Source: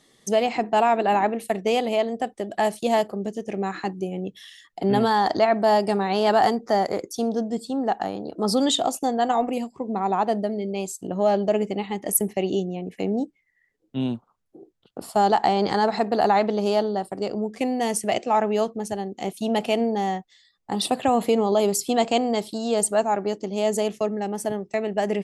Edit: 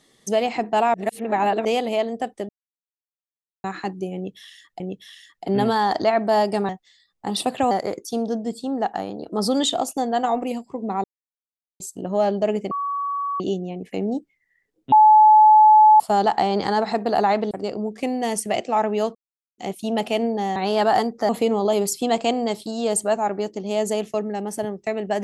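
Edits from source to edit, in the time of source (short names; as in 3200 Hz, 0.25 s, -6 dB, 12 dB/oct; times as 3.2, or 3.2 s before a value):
0.94–1.65 reverse
2.49–3.64 mute
4.15–4.8 loop, 2 plays
6.04–6.77 swap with 20.14–21.16
10.1–10.86 mute
11.77–12.46 bleep 1130 Hz -22.5 dBFS
13.98–15.06 bleep 859 Hz -8 dBFS
16.57–17.09 cut
18.73–19.16 mute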